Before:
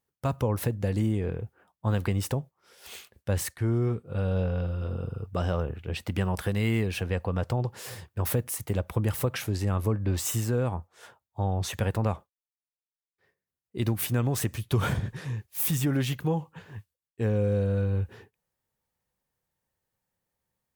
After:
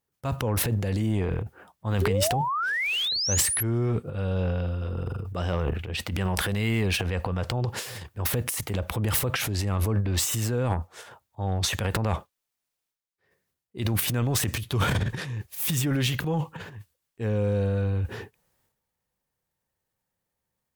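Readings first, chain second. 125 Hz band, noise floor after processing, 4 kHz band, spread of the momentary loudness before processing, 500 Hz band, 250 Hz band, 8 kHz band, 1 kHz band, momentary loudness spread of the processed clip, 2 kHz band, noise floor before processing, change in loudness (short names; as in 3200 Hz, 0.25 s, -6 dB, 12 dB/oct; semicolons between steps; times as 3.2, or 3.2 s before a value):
+1.0 dB, -84 dBFS, +10.5 dB, 11 LU, +0.5 dB, 0.0 dB, +7.5 dB, +5.0 dB, 10 LU, +7.5 dB, under -85 dBFS, +2.0 dB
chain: dynamic EQ 3200 Hz, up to +4 dB, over -50 dBFS, Q 0.71; transient shaper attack -4 dB, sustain +12 dB; painted sound rise, 2.01–3.63, 370–12000 Hz -27 dBFS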